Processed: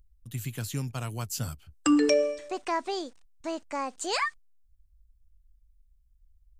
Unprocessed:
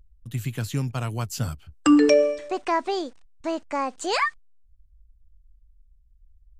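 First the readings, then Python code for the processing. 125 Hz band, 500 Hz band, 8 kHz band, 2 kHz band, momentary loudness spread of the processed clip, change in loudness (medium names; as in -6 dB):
-6.0 dB, -6.0 dB, 0.0 dB, -5.0 dB, 14 LU, -5.5 dB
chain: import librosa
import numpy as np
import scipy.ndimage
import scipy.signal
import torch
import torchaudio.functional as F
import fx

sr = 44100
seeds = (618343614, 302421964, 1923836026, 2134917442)

y = fx.high_shelf(x, sr, hz=5100.0, db=9.0)
y = y * librosa.db_to_amplitude(-6.0)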